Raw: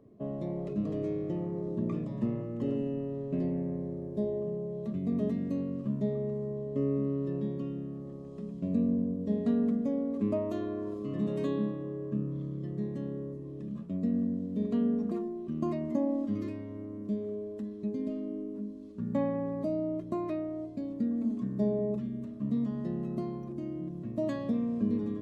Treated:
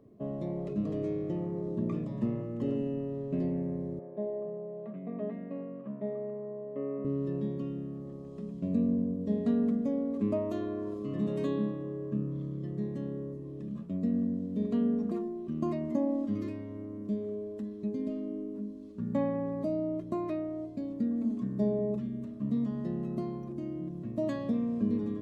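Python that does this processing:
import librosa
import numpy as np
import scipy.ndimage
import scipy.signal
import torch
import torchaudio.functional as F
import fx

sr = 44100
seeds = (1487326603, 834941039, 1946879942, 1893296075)

y = fx.cabinet(x, sr, low_hz=210.0, low_slope=24, high_hz=2400.0, hz=(250.0, 360.0, 670.0), db=(-10, -8, 4), at=(3.99, 7.05))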